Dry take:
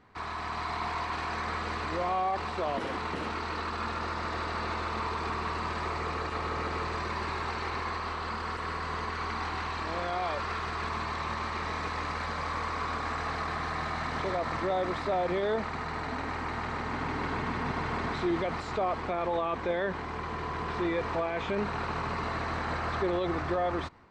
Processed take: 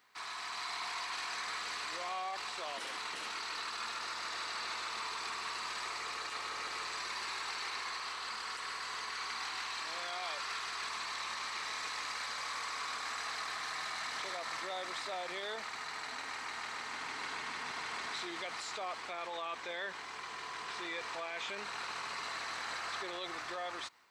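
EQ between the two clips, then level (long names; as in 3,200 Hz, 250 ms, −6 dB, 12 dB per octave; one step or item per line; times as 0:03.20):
first difference
+8.0 dB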